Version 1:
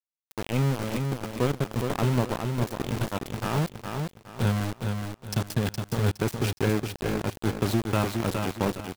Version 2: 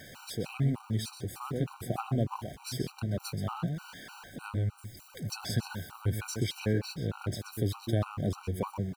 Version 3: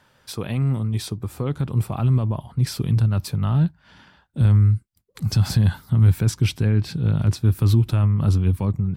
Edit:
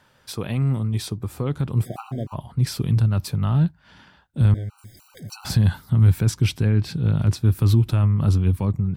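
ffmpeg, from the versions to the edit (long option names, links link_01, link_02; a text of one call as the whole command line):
ffmpeg -i take0.wav -i take1.wav -i take2.wav -filter_complex "[1:a]asplit=2[link_01][link_02];[2:a]asplit=3[link_03][link_04][link_05];[link_03]atrim=end=1.86[link_06];[link_01]atrim=start=1.82:end=2.36[link_07];[link_04]atrim=start=2.32:end=4.542[link_08];[link_02]atrim=start=4.538:end=5.452[link_09];[link_05]atrim=start=5.448[link_10];[link_06][link_07]acrossfade=duration=0.04:curve1=tri:curve2=tri[link_11];[link_11][link_08]acrossfade=duration=0.04:curve1=tri:curve2=tri[link_12];[link_12][link_09]acrossfade=duration=0.004:curve1=hsin:curve2=hsin[link_13];[link_13][link_10]acrossfade=duration=0.004:curve1=hsin:curve2=hsin" out.wav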